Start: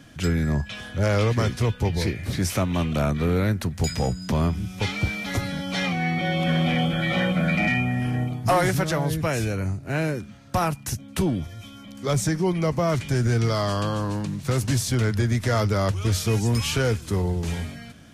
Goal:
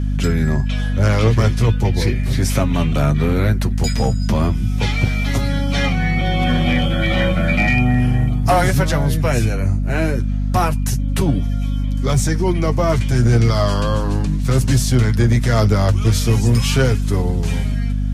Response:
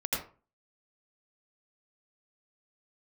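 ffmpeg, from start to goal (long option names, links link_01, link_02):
-af "flanger=delay=6.9:depth=2.4:regen=35:speed=0.35:shape=triangular,aeval=exprs='val(0)+0.0501*(sin(2*PI*50*n/s)+sin(2*PI*2*50*n/s)/2+sin(2*PI*3*50*n/s)/3+sin(2*PI*4*50*n/s)/4+sin(2*PI*5*50*n/s)/5)':channel_layout=same,aeval=exprs='clip(val(0),-1,0.141)':channel_layout=same,volume=8.5dB"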